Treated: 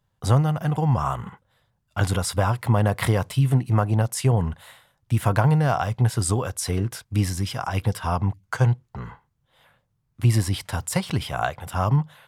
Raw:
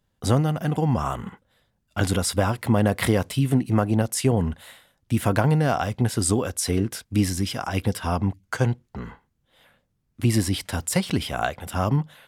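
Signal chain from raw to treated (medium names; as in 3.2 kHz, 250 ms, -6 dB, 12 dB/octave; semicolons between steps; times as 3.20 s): graphic EQ 125/250/1000 Hz +8/-6/+6 dB; trim -2.5 dB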